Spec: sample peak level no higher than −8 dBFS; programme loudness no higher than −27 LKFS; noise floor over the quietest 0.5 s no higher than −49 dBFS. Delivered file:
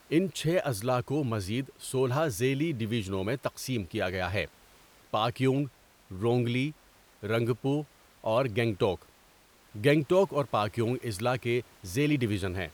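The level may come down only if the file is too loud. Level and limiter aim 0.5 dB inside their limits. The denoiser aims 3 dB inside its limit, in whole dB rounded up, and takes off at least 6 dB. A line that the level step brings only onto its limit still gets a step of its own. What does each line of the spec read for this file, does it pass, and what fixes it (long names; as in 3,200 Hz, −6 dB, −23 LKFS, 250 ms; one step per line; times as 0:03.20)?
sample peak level −11.5 dBFS: in spec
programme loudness −29.5 LKFS: in spec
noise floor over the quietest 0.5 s −60 dBFS: in spec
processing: no processing needed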